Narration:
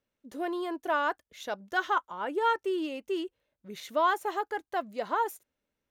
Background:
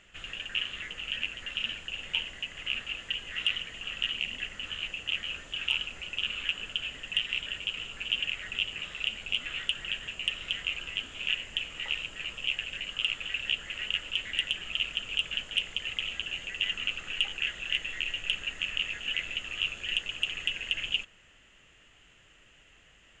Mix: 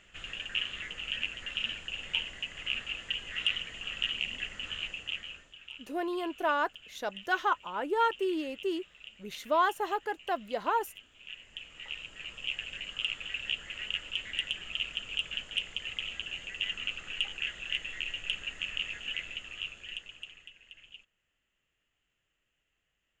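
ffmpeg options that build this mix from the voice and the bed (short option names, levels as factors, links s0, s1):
-filter_complex "[0:a]adelay=5550,volume=0.944[s0];[1:a]volume=4.47,afade=t=out:st=4.78:d=0.79:silence=0.149624,afade=t=in:st=11.22:d=1.44:silence=0.199526,afade=t=out:st=18.95:d=1.56:silence=0.125893[s1];[s0][s1]amix=inputs=2:normalize=0"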